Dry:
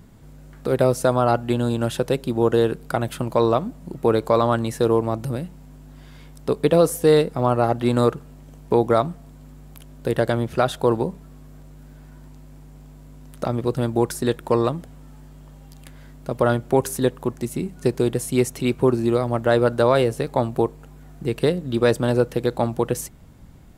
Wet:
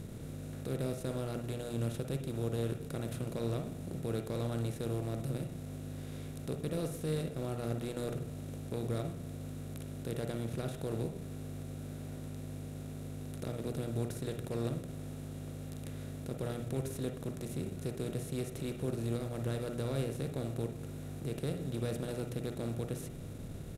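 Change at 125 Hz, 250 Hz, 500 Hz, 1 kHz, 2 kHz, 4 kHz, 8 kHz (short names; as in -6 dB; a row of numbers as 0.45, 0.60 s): -10.0, -14.5, -19.5, -24.0, -18.0, -14.5, -13.5 dB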